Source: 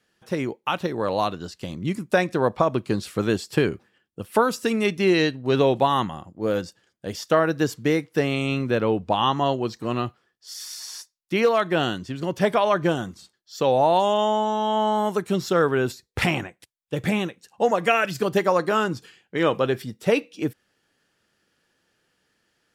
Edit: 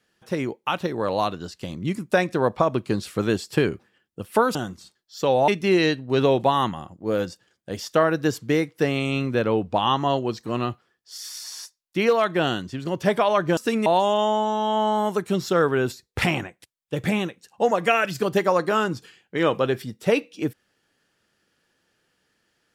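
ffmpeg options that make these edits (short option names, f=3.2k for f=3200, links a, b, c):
-filter_complex "[0:a]asplit=5[a][b][c][d][e];[a]atrim=end=4.552[f];[b]atrim=start=12.928:end=13.862[g];[c]atrim=start=4.838:end=12.932[h];[d]atrim=start=4.548:end=4.842[i];[e]atrim=start=13.858[j];[f][g]acrossfade=d=0.004:c1=hsin:c2=hsin[k];[k][h]acrossfade=d=0.004:c1=hsin:c2=hsin[l];[l][i]acrossfade=d=0.004:c1=hsin:c2=hsin[m];[m][j]acrossfade=d=0.004:c1=hsin:c2=hsin"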